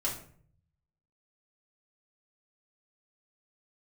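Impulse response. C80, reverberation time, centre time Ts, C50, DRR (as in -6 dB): 11.5 dB, 0.55 s, 26 ms, 7.0 dB, -5.0 dB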